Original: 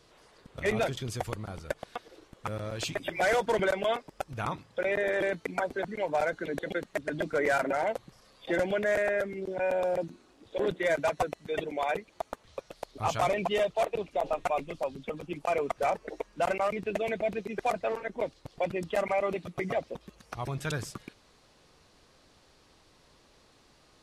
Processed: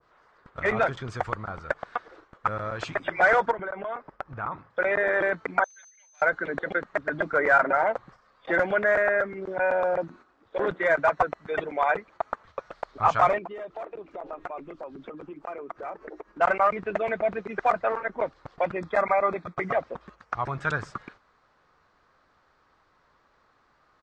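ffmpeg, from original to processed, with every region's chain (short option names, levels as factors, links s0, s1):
-filter_complex "[0:a]asettb=1/sr,asplit=3[s0][s1][s2];[s0]atrim=end=3.514[s3];[s1]atrim=start=3.51:end=4.7,asetpts=PTS-STARTPTS,afade=t=in:d=0.004:c=qsin,afade=t=out:st=1.186:d=0.004:c=qsin,lowpass=f=1500:p=1,acompressor=threshold=0.02:ratio=12:attack=3.2:release=140:knee=1:detection=peak[s4];[s2]atrim=start=4.696[s5];[s3][s4]acrossfade=d=0.004:c1=hsin:c2=qsin[s6];[s6][s5]acrossfade=d=0.004:c1=qsin:c2=hsin,asettb=1/sr,asplit=3[s7][s8][s9];[s7]atrim=end=5.644[s10];[s8]atrim=start=5.64:end=6.22,asetpts=PTS-STARTPTS,afade=t=in:d=0.004:c=qsin,afade=t=out:st=0.576:d=0.004:c=qsin,highshelf=f=5200:g=-11,aeval=exprs='val(0)+0.00891*sin(2*PI*6200*n/s)':c=same,asuperpass=centerf=5500:order=4:qfactor=1.3[s11];[s9]atrim=start=6.216[s12];[s10][s11]acrossfade=d=0.004:c1=hsin:c2=qsin[s13];[s13][s12]acrossfade=d=0.004:c1=qsin:c2=hsin,asettb=1/sr,asplit=3[s14][s15][s16];[s14]atrim=end=13.384[s17];[s15]atrim=start=13.38:end=16.41,asetpts=PTS-STARTPTS,afade=t=in:d=0.004:c=qsin,afade=t=out:st=3.026:d=0.004:c=qsin,equalizer=f=330:w=1.6:g=13.5,acompressor=threshold=0.01:ratio=5:attack=3.2:release=140:knee=1:detection=peak[s18];[s16]atrim=start=16.406[s19];[s17][s18]acrossfade=d=0.004:c1=hsin:c2=qsin[s20];[s20][s19]acrossfade=d=0.004:c1=qsin:c2=hsin,asettb=1/sr,asplit=3[s21][s22][s23];[s21]atrim=end=18.774[s24];[s22]atrim=start=18.77:end=19.57,asetpts=PTS-STARTPTS,afade=t=in:d=0.004:c=qsin,afade=t=out:st=0.796:d=0.004:c=qsin,agate=range=0.0224:threshold=0.00562:ratio=3:release=100:detection=peak,asuperstop=centerf=2900:order=8:qfactor=5.1[s25];[s23]atrim=start=19.566[s26];[s24][s25]acrossfade=d=0.004:c1=hsin:c2=qsin[s27];[s27][s26]acrossfade=d=0.004:c1=qsin:c2=hsin,firequalizer=gain_entry='entry(310,0);entry(1300,14);entry(2700,-2);entry(7800,-10);entry(11000,-30)':delay=0.05:min_phase=1,agate=range=0.398:threshold=0.00355:ratio=16:detection=peak,adynamicequalizer=threshold=0.0158:dfrequency=1500:dqfactor=0.7:tfrequency=1500:tqfactor=0.7:attack=5:release=100:ratio=0.375:range=1.5:mode=cutabove:tftype=highshelf"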